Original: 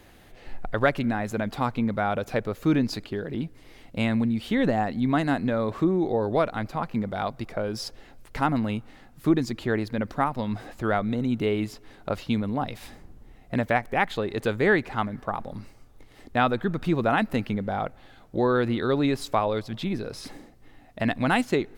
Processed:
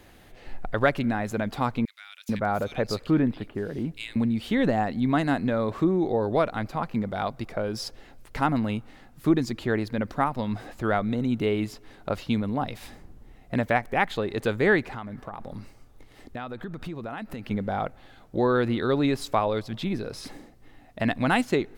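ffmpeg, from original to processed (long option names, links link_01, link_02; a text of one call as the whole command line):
ffmpeg -i in.wav -filter_complex "[0:a]asettb=1/sr,asplit=3[link_01][link_02][link_03];[link_01]atrim=end=1.854[link_04];[link_02]atrim=start=1.85:end=4.16,asetpts=PTS-STARTPTS,afade=type=in:duration=0.004:curve=qsin,afade=type=out:start_time=2.306:duration=0.004:curve=qsin,acrossover=split=2300[link_05][link_06];[link_05]adelay=440[link_07];[link_07][link_06]amix=inputs=2:normalize=0,atrim=end_sample=101871[link_08];[link_03]atrim=start=4.156[link_09];[link_04][link_08]acrossfade=duration=0.004:curve1=hsin:curve2=qsin[link_10];[link_10][link_09]acrossfade=duration=0.004:curve1=qsin:curve2=hsin,asettb=1/sr,asplit=3[link_11][link_12][link_13];[link_11]atrim=end=14.884[link_14];[link_12]atrim=start=14.88:end=17.51,asetpts=PTS-STARTPTS,afade=type=in:duration=0.004:curve=qsin,afade=type=out:start_time=2.626:duration=0.004:curve=qsin,acompressor=threshold=-32dB:ratio=6:attack=3.2:release=140:knee=1:detection=peak[link_15];[link_13]atrim=start=17.506[link_16];[link_14][link_15]acrossfade=duration=0.004:curve1=hsin:curve2=qsin[link_17];[link_17][link_16]acrossfade=duration=0.004:curve1=qsin:curve2=hsin" out.wav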